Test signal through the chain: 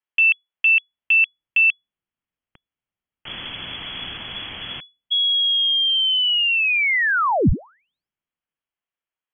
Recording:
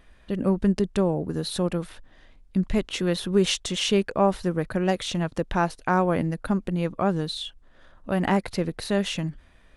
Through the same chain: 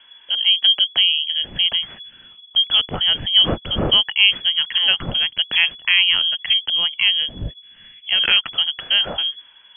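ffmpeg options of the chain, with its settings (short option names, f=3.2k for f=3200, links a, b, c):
-filter_complex "[0:a]lowpass=f=2.9k:t=q:w=0.5098,lowpass=f=2.9k:t=q:w=0.6013,lowpass=f=2.9k:t=q:w=0.9,lowpass=f=2.9k:t=q:w=2.563,afreqshift=-3400,acrossover=split=260|1800[a][b][c];[a]dynaudnorm=f=100:g=21:m=16dB[d];[d][b][c]amix=inputs=3:normalize=0,volume=6dB"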